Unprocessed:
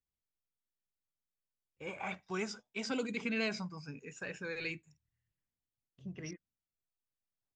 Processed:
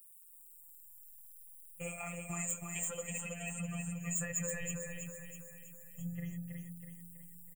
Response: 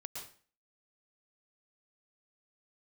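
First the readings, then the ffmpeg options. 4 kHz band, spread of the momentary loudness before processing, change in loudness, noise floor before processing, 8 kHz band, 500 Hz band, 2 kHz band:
-10.0 dB, 13 LU, 0.0 dB, under -85 dBFS, +16.0 dB, -4.5 dB, -4.0 dB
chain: -filter_complex "[0:a]afftfilt=real='re*pow(10,7/40*sin(2*PI*(1.1*log(max(b,1)*sr/1024/100)/log(2)-(-0.59)*(pts-256)/sr)))':imag='im*pow(10,7/40*sin(2*PI*(1.1*log(max(b,1)*sr/1024/100)/log(2)-(-0.59)*(pts-256)/sr)))':win_size=1024:overlap=0.75,bandreject=f=60:t=h:w=6,bandreject=f=120:t=h:w=6,bandreject=f=180:t=h:w=6,asubboost=boost=9:cutoff=120,acompressor=threshold=0.00447:ratio=12,aexciter=amount=12.5:drive=9.5:freq=6900,aeval=exprs='0.0168*(abs(mod(val(0)/0.0168+3,4)-2)-1)':c=same,afftfilt=real='hypot(re,im)*cos(PI*b)':imag='0':win_size=1024:overlap=0.75,asuperstop=centerf=4800:order=12:qfactor=1.3,aecho=1:1:1.6:0.85,asplit=2[s0][s1];[s1]aecho=0:1:324|648|972|1296|1620|1944:0.631|0.309|0.151|0.0742|0.0364|0.0178[s2];[s0][s2]amix=inputs=2:normalize=0,volume=2.82"

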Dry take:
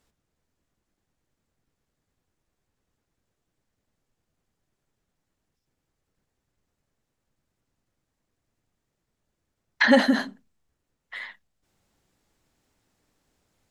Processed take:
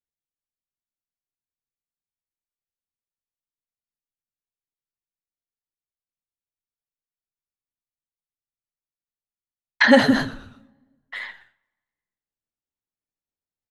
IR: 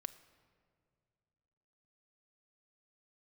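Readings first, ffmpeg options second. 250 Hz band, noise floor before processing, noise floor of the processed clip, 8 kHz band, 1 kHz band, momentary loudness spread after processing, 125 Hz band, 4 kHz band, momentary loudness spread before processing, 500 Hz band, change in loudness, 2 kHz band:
+3.5 dB, -81 dBFS, under -85 dBFS, +4.0 dB, +4.0 dB, 20 LU, no reading, +4.0 dB, 20 LU, +4.0 dB, +4.0 dB, +4.0 dB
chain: -filter_complex "[0:a]asplit=5[s0][s1][s2][s3][s4];[s1]adelay=123,afreqshift=-120,volume=0.133[s5];[s2]adelay=246,afreqshift=-240,volume=0.0575[s6];[s3]adelay=369,afreqshift=-360,volume=0.0245[s7];[s4]adelay=492,afreqshift=-480,volume=0.0106[s8];[s0][s5][s6][s7][s8]amix=inputs=5:normalize=0,agate=range=0.0224:threshold=0.00251:ratio=3:detection=peak,asplit=2[s9][s10];[1:a]atrim=start_sample=2205,asetrate=79380,aresample=44100[s11];[s10][s11]afir=irnorm=-1:irlink=0,volume=1.12[s12];[s9][s12]amix=inputs=2:normalize=0,volume=1.12"

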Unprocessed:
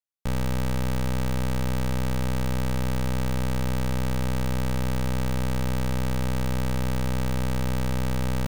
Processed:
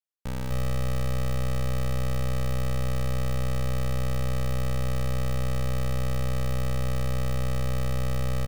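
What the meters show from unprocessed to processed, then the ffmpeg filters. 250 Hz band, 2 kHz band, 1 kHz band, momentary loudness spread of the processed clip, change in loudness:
-6.0 dB, -3.5 dB, -3.5 dB, 0 LU, -2.0 dB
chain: -af "aecho=1:1:166.2|253.6:0.251|1,volume=0.531"

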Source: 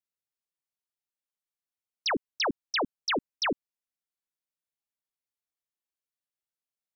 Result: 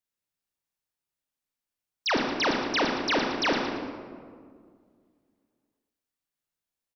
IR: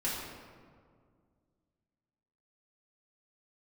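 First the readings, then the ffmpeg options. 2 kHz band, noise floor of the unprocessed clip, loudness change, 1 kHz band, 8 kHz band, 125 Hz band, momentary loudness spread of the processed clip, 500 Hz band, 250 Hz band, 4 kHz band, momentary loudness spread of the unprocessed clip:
+4.5 dB, under -85 dBFS, +4.0 dB, +4.5 dB, no reading, +7.5 dB, 13 LU, +5.0 dB, +6.5 dB, +3.0 dB, 2 LU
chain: -filter_complex "[0:a]lowshelf=f=220:g=4,aecho=1:1:114|228|342|456:0.316|0.12|0.0457|0.0174,acrossover=split=4900[s0][s1];[s1]acompressor=threshold=0.0141:ratio=4:attack=1:release=60[s2];[s0][s2]amix=inputs=2:normalize=0,asplit=2[s3][s4];[1:a]atrim=start_sample=2205,adelay=30[s5];[s4][s5]afir=irnorm=-1:irlink=0,volume=0.447[s6];[s3][s6]amix=inputs=2:normalize=0,volume=1.19"

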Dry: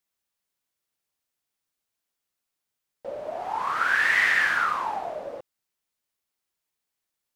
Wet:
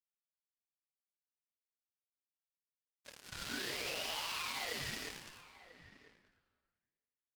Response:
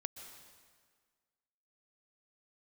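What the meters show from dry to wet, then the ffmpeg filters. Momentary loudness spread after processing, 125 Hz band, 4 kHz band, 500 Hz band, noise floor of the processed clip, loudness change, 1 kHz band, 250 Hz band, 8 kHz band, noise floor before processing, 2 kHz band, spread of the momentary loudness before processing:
20 LU, no reading, -3.0 dB, -14.0 dB, under -85 dBFS, -17.0 dB, -20.5 dB, -4.0 dB, -1.0 dB, -84 dBFS, -21.5 dB, 18 LU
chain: -filter_complex "[0:a]bandpass=f=3900:t=q:w=3.1:csg=0,aemphasis=mode=production:type=75kf,aecho=1:1:5.8:0.54,alimiter=level_in=3.16:limit=0.0631:level=0:latency=1:release=182,volume=0.316,acompressor=threshold=0.00501:ratio=6,acrusher=bits=7:mix=0:aa=0.5,asplit=2[s0][s1];[s1]adelay=991.3,volume=0.2,highshelf=f=4000:g=-22.3[s2];[s0][s2]amix=inputs=2:normalize=0,asplit=2[s3][s4];[1:a]atrim=start_sample=2205[s5];[s4][s5]afir=irnorm=-1:irlink=0,volume=1.68[s6];[s3][s6]amix=inputs=2:normalize=0,aeval=exprs='val(0)*sin(2*PI*870*n/s+870*0.3/0.99*sin(2*PI*0.99*n/s))':c=same,volume=1.58"

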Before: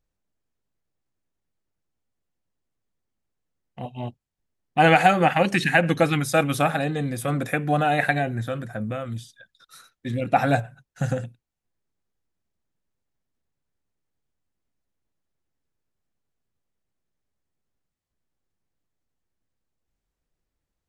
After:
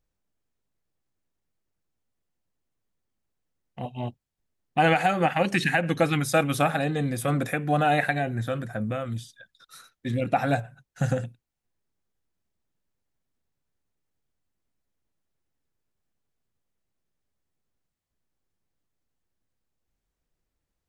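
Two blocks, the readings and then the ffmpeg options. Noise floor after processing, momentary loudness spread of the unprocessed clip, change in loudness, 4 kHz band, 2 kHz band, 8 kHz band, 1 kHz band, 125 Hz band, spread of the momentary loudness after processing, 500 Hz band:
-83 dBFS, 18 LU, -3.0 dB, -2.5 dB, -3.5 dB, -1.0 dB, -3.5 dB, -1.5 dB, 14 LU, -2.5 dB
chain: -af "alimiter=limit=0.282:level=0:latency=1:release=394"

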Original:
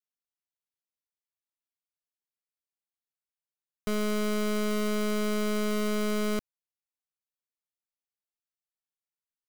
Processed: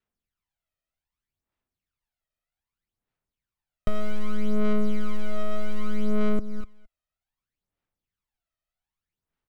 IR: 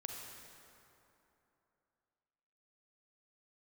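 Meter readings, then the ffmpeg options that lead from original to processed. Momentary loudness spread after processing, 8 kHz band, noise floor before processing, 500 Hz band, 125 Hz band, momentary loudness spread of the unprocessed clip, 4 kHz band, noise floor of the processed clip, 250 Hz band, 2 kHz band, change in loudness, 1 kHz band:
11 LU, under -10 dB, under -85 dBFS, -2.5 dB, no reading, 4 LU, -8.5 dB, under -85 dBFS, +0.5 dB, -5.0 dB, -1.5 dB, -2.5 dB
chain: -filter_complex "[0:a]asplit=2[s0][s1];[s1]aecho=0:1:248:0.119[s2];[s0][s2]amix=inputs=2:normalize=0,acontrast=89,lowshelf=f=75:g=9,asplit=2[s3][s4];[s4]aecho=0:1:215:0.0944[s5];[s3][s5]amix=inputs=2:normalize=0,acompressor=threshold=0.0447:ratio=6,aphaser=in_gain=1:out_gain=1:delay=1.6:decay=0.64:speed=0.64:type=sinusoidal,bass=f=250:g=4,treble=f=4000:g=-11,volume=0.794"

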